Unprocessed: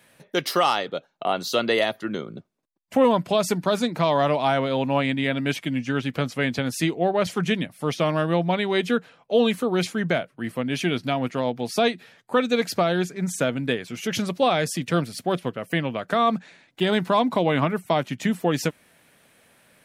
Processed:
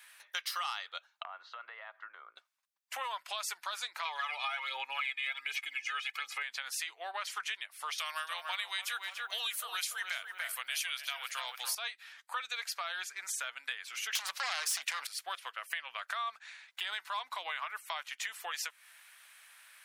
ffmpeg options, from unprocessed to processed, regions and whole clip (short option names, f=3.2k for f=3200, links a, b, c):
-filter_complex "[0:a]asettb=1/sr,asplit=3[a][b][c];[a]atrim=end=1.234[d];[b]atrim=start=1.23:end=2.36,asetpts=PTS-STARTPTS,afade=t=in:d=0.004:c=qsin,afade=t=out:st=1.126:d=0.004:c=qsin,aemphasis=mode=reproduction:type=75kf,acompressor=threshold=-32dB:ratio=12:attack=3.2:release=140:knee=1:detection=peak,asuperpass=centerf=690:order=4:qfactor=0.5[e];[c]atrim=start=2.356[f];[d][e]acrossfade=d=0.004:c1=hsin:c2=qsin[g];[g][f]acrossfade=d=0.004:c1=qsin:c2=hsin,asettb=1/sr,asplit=3[h][i][j];[h]atrim=end=4.054[k];[i]atrim=start=4.05:end=6.43,asetpts=PTS-STARTPTS,afade=t=in:d=0.004:c=qsin,afade=t=out:st=2.376:d=0.004:c=qsin,aphaser=in_gain=1:out_gain=1:delay=1.7:decay=0.55:speed=1.3:type=sinusoidal,equalizer=f=2.3k:w=7.8:g=10.5,aecho=1:1:2.4:0.82,atrim=end_sample=104958[l];[j]atrim=start=6.426[m];[k][l]acrossfade=d=0.004:c1=hsin:c2=qsin[n];[n][m]acrossfade=d=0.004:c1=qsin:c2=hsin,asettb=1/sr,asplit=3[o][p][q];[o]atrim=end=7.984[r];[p]atrim=start=7.98:end=11.75,asetpts=PTS-STARTPTS,afade=t=in:d=0.004:c=qsin,afade=t=out:st=3.766:d=0.004:c=qsin,aemphasis=mode=production:type=riaa,asplit=2[s][t];[t]adelay=289,lowpass=f=1.4k:p=1,volume=-5dB,asplit=2[u][v];[v]adelay=289,lowpass=f=1.4k:p=1,volume=0.46,asplit=2[w][x];[x]adelay=289,lowpass=f=1.4k:p=1,volume=0.46,asplit=2[y][z];[z]adelay=289,lowpass=f=1.4k:p=1,volume=0.46,asplit=2[aa][ab];[ab]adelay=289,lowpass=f=1.4k:p=1,volume=0.46,asplit=2[ac][ad];[ad]adelay=289,lowpass=f=1.4k:p=1,volume=0.46[ae];[s][u][w][y][aa][ac][ae]amix=inputs=7:normalize=0,atrim=end_sample=166257[af];[q]atrim=start=11.746[ag];[r][af]acrossfade=d=0.004:c1=hsin:c2=qsin[ah];[ah][ag]acrossfade=d=0.004:c1=qsin:c2=hsin,asettb=1/sr,asplit=3[ai][aj][ak];[ai]atrim=end=14.154[al];[aj]atrim=start=14.15:end=15.07,asetpts=PTS-STARTPTS,afade=t=in:d=0.004:c=qsin,afade=t=out:st=0.916:d=0.004:c=qsin,acompressor=threshold=-24dB:ratio=12:attack=3.2:release=140:knee=1:detection=peak,aeval=exprs='0.188*sin(PI/2*3.98*val(0)/0.188)':c=same[am];[ak]atrim=start=15.066[an];[al][am]acrossfade=d=0.004:c1=hsin:c2=qsin[ao];[ao][an]acrossfade=d=0.004:c1=qsin:c2=hsin,alimiter=limit=-12.5dB:level=0:latency=1:release=202,highpass=f=1.1k:w=0.5412,highpass=f=1.1k:w=1.3066,acompressor=threshold=-39dB:ratio=3,volume=2dB"